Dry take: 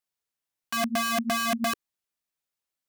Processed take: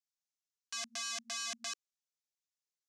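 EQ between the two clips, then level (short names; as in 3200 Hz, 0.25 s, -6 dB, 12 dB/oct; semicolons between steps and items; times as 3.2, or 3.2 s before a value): band-pass 6500 Hz, Q 2; air absorption 71 m; +3.0 dB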